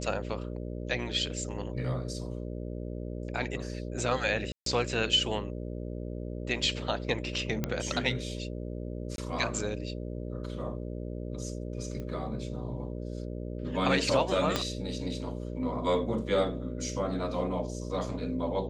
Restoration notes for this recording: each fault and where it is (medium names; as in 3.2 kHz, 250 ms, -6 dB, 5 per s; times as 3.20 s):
buzz 60 Hz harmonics 10 -37 dBFS
4.52–4.66 s: dropout 143 ms
7.64 s: pop -15 dBFS
9.16–9.18 s: dropout 22 ms
12.00 s: pop -27 dBFS
14.56 s: pop -12 dBFS